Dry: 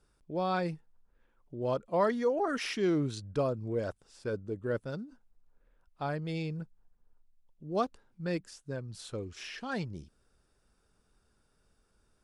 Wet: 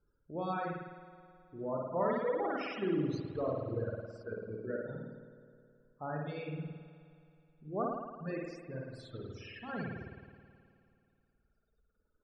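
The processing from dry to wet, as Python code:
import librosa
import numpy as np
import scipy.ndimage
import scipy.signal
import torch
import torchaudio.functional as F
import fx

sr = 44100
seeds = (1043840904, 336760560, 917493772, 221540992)

y = fx.spec_topn(x, sr, count=32)
y = fx.rev_spring(y, sr, rt60_s=2.7, pass_ms=(53,), chirp_ms=55, drr_db=-5.0)
y = fx.dereverb_blind(y, sr, rt60_s=2.0)
y = F.gain(torch.from_numpy(y), -6.5).numpy()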